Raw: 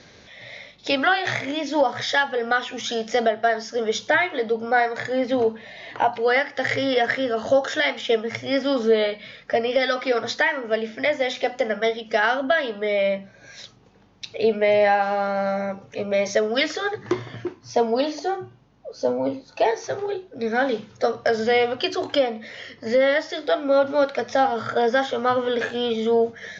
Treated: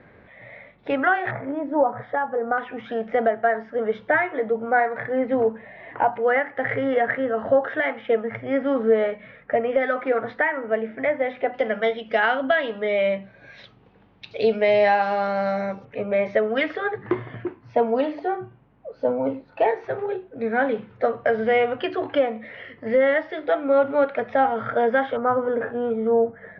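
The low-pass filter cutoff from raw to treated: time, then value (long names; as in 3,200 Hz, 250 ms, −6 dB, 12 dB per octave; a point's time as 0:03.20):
low-pass filter 24 dB per octave
2,000 Hz
from 0:01.31 1,300 Hz
from 0:02.58 2,000 Hz
from 0:11.54 3,200 Hz
from 0:14.31 5,100 Hz
from 0:15.85 2,500 Hz
from 0:25.17 1,500 Hz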